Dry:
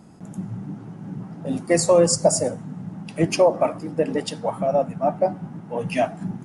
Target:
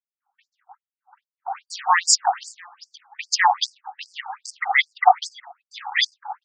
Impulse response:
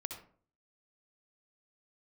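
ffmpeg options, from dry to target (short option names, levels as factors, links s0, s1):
-filter_complex "[0:a]agate=range=0.0126:threshold=0.0355:ratio=16:detection=peak,asplit=2[s0][s1];[s1]alimiter=limit=0.188:level=0:latency=1:release=391,volume=0.75[s2];[s0][s2]amix=inputs=2:normalize=0,highpass=f=700:t=q:w=7.3,asoftclip=type=hard:threshold=0.447,adynamicsmooth=sensitivity=3:basefreq=2200,aecho=1:1:687:0.0708,afftfilt=real='re*between(b*sr/1024,1000*pow(6600/1000,0.5+0.5*sin(2*PI*2.5*pts/sr))/1.41,1000*pow(6600/1000,0.5+0.5*sin(2*PI*2.5*pts/sr))*1.41)':imag='im*between(b*sr/1024,1000*pow(6600/1000,0.5+0.5*sin(2*PI*2.5*pts/sr))/1.41,1000*pow(6600/1000,0.5+0.5*sin(2*PI*2.5*pts/sr))*1.41)':win_size=1024:overlap=0.75,volume=2.11"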